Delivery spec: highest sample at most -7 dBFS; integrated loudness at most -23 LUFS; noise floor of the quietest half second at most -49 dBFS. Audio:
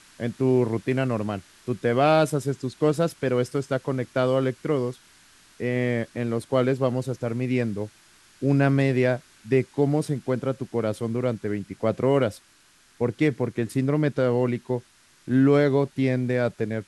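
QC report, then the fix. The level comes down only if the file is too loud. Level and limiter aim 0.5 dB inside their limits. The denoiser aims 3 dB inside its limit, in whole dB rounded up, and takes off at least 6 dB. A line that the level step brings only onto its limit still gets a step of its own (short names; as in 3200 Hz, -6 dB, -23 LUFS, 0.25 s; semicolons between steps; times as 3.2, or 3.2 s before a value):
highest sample -8.5 dBFS: OK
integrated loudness -24.5 LUFS: OK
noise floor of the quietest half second -58 dBFS: OK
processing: none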